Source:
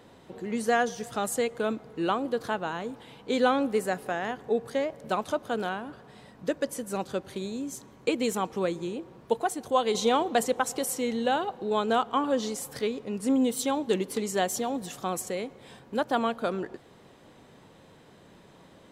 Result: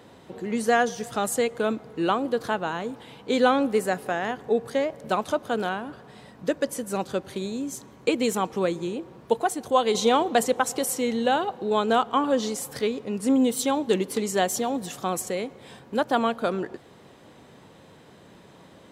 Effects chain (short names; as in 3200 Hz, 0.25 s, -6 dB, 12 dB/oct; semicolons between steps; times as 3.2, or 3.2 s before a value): HPF 51 Hz; gain +3.5 dB